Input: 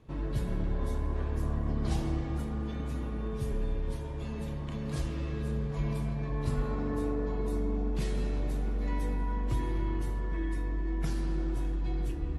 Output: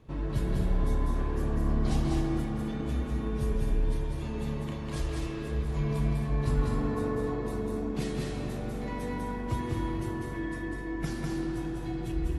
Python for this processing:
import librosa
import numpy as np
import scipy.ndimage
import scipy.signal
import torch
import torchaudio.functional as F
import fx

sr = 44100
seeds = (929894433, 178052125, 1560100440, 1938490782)

y = fx.peak_eq(x, sr, hz=180.0, db=-13.5, octaves=0.54, at=(4.73, 5.76))
y = fx.echo_multitap(y, sr, ms=(198, 256), db=(-3.0, -9.0))
y = y * librosa.db_to_amplitude(1.5)